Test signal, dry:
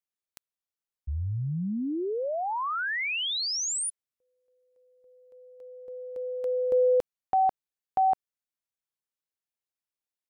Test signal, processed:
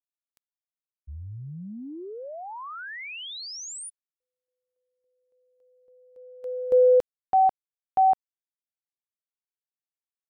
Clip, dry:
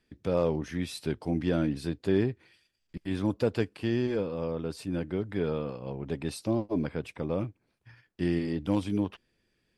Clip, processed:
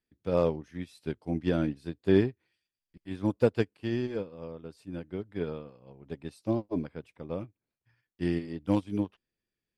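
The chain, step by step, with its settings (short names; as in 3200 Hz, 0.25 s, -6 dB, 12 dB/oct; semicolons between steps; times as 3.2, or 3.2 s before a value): upward expander 2.5:1, over -36 dBFS; gain +5 dB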